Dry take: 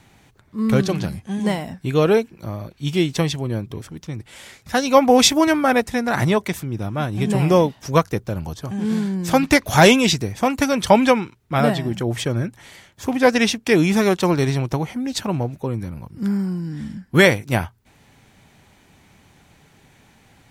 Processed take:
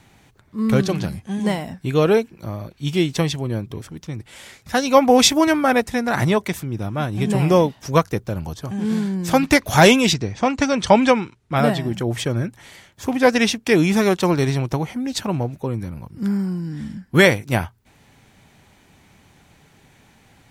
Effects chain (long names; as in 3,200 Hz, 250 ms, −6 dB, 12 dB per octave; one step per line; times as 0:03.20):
0:10.13–0:11.55: low-pass filter 5,900 Hz → 11,000 Hz 24 dB per octave